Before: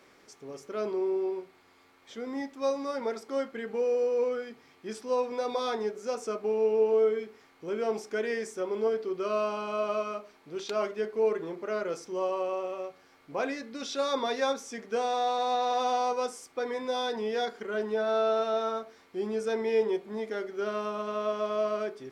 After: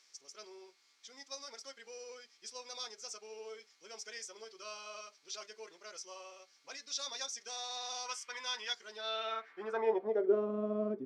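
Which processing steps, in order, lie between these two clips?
band-pass sweep 5700 Hz -> 240 Hz, 17.72–21.17; spectral gain 16.12–17.47, 920–3400 Hz +10 dB; time stretch by phase-locked vocoder 0.5×; gain +7 dB

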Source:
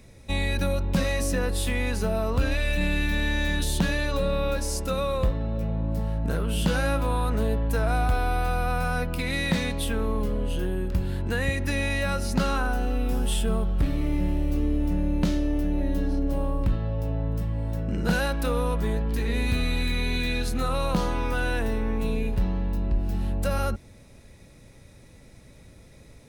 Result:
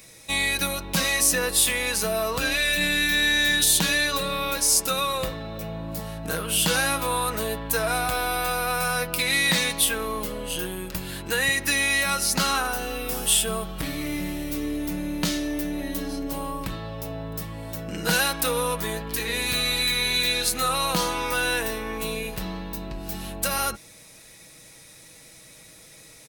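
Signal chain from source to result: tilt +3.5 dB/oct; comb 6.3 ms, depth 46%; gain +3 dB

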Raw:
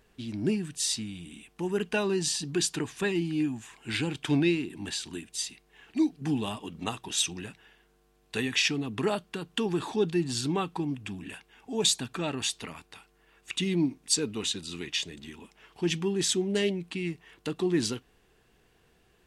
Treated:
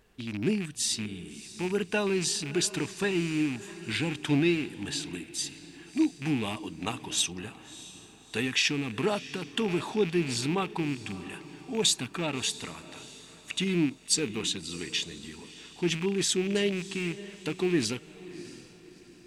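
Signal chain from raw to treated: rattling part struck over -35 dBFS, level -28 dBFS; diffused feedback echo 0.648 s, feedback 40%, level -16 dB

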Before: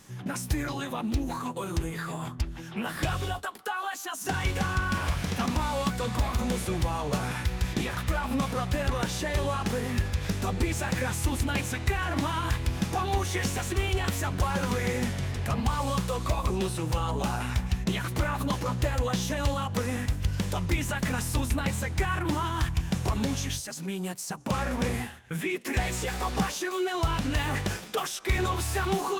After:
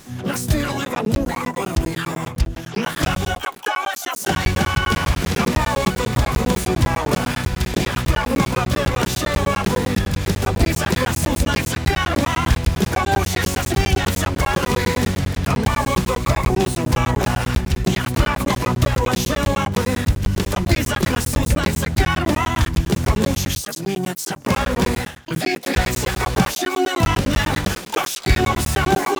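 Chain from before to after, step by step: harmoniser -5 st -8 dB, +12 st -5 dB; crackling interface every 0.10 s, samples 512, zero, from 0.85; gain +8 dB

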